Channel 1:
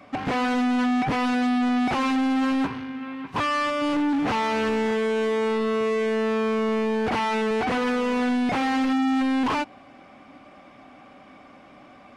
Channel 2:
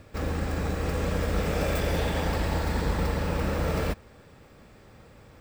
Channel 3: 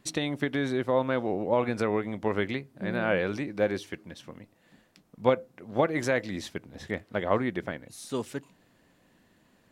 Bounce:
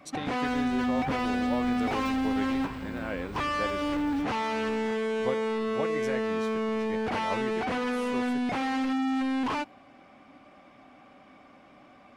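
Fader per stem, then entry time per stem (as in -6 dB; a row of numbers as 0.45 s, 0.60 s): -5.5 dB, -17.0 dB, -9.0 dB; 0.00 s, 0.30 s, 0.00 s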